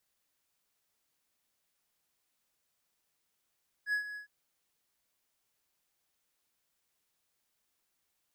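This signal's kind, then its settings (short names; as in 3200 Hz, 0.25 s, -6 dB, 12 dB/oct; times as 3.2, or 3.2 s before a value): ADSR triangle 1680 Hz, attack 70 ms, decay 0.101 s, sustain -12.5 dB, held 0.30 s, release 0.111 s -25 dBFS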